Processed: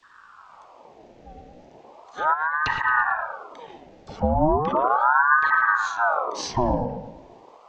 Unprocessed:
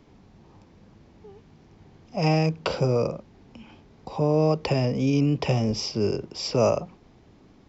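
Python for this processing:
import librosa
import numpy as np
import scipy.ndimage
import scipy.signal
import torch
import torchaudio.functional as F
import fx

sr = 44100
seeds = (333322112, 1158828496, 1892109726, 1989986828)

y = fx.notch(x, sr, hz=4900.0, q=14.0)
y = fx.env_lowpass_down(y, sr, base_hz=420.0, full_db=-18.5)
y = fx.band_shelf(y, sr, hz=800.0, db=-13.0, octaves=1.0)
y = fx.echo_wet_lowpass(y, sr, ms=111, feedback_pct=48, hz=1600.0, wet_db=-4.5)
y = fx.over_compress(y, sr, threshold_db=-26.0, ratio=-0.5, at=(2.3, 2.83))
y = fx.dispersion(y, sr, late='lows', ms=41.0, hz=440.0)
y = fx.ring_lfo(y, sr, carrier_hz=880.0, swing_pct=60, hz=0.36)
y = F.gain(torch.from_numpy(y), 5.5).numpy()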